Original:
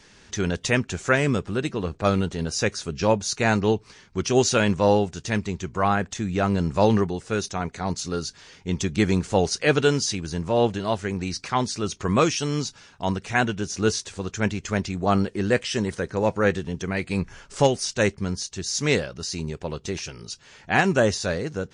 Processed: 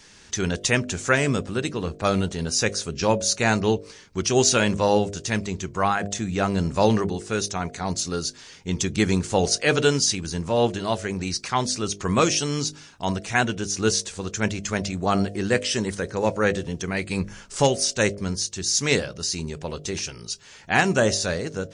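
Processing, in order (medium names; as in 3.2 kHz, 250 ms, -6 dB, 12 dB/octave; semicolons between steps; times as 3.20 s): treble shelf 4.9 kHz +8.5 dB; de-hum 50.42 Hz, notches 14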